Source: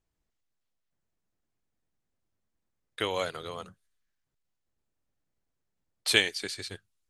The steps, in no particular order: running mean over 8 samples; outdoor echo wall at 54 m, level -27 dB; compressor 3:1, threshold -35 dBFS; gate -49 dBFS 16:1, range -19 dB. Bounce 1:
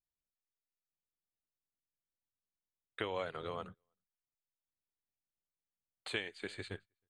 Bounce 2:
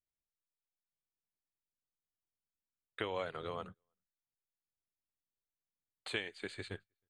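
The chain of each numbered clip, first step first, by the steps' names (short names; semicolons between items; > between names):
outdoor echo > gate > compressor > running mean; compressor > outdoor echo > gate > running mean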